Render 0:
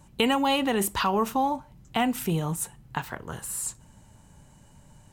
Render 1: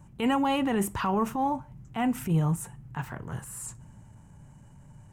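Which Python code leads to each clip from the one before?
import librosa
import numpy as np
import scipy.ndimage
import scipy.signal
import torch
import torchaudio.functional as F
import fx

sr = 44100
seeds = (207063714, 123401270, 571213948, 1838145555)

y = fx.transient(x, sr, attack_db=-8, sustain_db=1)
y = fx.graphic_eq_10(y, sr, hz=(125, 500, 4000, 16000), db=(7, -3, -11, -10))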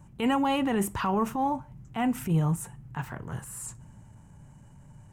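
y = x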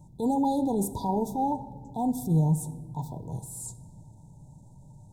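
y = fx.brickwall_bandstop(x, sr, low_hz=1000.0, high_hz=3400.0)
y = fx.room_shoebox(y, sr, seeds[0], volume_m3=4000.0, walls='mixed', distance_m=0.52)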